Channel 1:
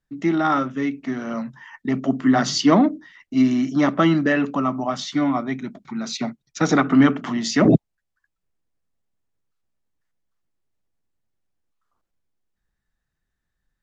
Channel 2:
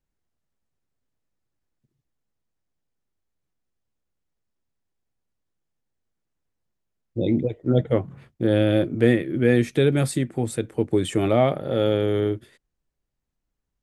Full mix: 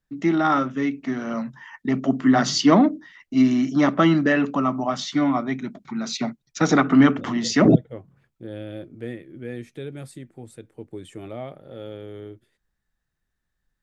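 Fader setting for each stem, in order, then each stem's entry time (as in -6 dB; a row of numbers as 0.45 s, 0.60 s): 0.0 dB, -15.5 dB; 0.00 s, 0.00 s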